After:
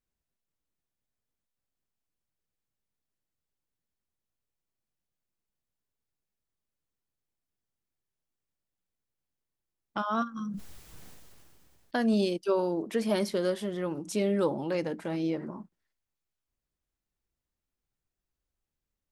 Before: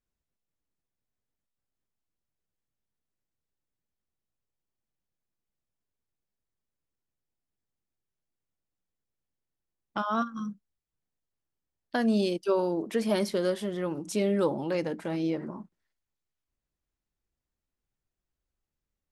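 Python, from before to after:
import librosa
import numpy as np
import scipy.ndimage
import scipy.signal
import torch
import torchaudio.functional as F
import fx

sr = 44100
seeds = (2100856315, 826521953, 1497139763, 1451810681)

y = fx.sustainer(x, sr, db_per_s=22.0, at=(10.45, 12.25))
y = y * librosa.db_to_amplitude(-1.0)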